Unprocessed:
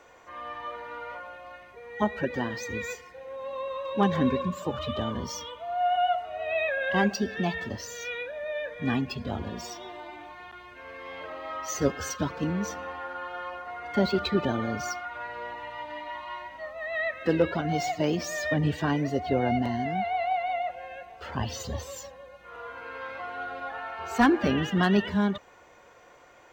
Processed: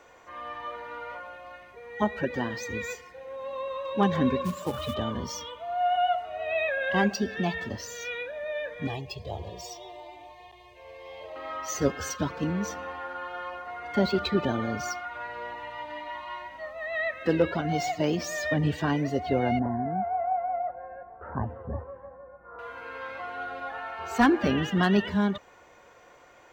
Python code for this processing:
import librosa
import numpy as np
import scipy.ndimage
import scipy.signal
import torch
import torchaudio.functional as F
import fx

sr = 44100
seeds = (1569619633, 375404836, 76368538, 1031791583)

y = fx.quant_float(x, sr, bits=2, at=(4.44, 4.93), fade=0.02)
y = fx.fixed_phaser(y, sr, hz=590.0, stages=4, at=(8.87, 11.36))
y = fx.steep_lowpass(y, sr, hz=1500.0, slope=36, at=(19.59, 22.59))